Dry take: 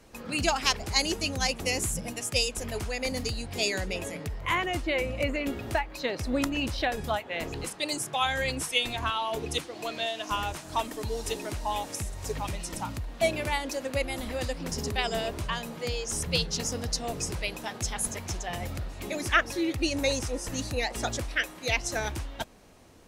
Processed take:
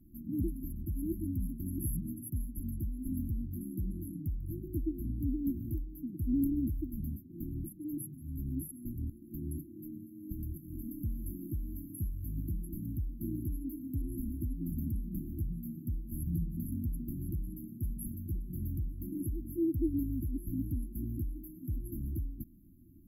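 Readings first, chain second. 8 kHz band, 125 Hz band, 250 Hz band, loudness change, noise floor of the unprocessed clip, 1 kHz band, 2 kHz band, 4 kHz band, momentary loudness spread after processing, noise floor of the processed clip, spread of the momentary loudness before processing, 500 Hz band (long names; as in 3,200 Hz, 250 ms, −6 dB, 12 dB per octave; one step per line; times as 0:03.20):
−18.5 dB, 0.0 dB, −0.5 dB, −8.0 dB, −45 dBFS, below −40 dB, below −40 dB, below −40 dB, 8 LU, −52 dBFS, 8 LU, −17.5 dB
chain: linear-phase brick-wall band-stop 350–11,000 Hz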